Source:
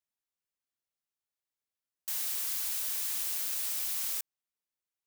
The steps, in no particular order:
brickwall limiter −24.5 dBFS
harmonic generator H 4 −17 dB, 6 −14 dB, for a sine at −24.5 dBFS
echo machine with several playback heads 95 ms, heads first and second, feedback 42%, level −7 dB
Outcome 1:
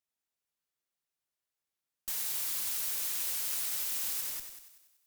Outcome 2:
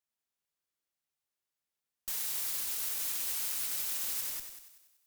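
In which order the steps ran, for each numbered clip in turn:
echo machine with several playback heads, then harmonic generator, then brickwall limiter
echo machine with several playback heads, then brickwall limiter, then harmonic generator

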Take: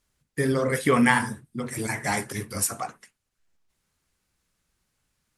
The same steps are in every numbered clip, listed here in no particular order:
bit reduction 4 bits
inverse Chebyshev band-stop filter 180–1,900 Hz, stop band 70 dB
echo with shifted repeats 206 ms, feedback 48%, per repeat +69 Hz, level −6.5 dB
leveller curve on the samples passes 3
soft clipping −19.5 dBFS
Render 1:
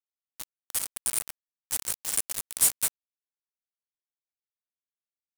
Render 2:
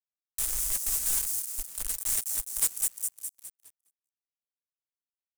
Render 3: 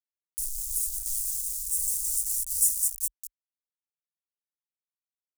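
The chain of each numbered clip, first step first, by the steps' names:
inverse Chebyshev band-stop filter, then leveller curve on the samples, then echo with shifted repeats, then soft clipping, then bit reduction
bit reduction, then soft clipping, then echo with shifted repeats, then inverse Chebyshev band-stop filter, then leveller curve on the samples
leveller curve on the samples, then echo with shifted repeats, then soft clipping, then bit reduction, then inverse Chebyshev band-stop filter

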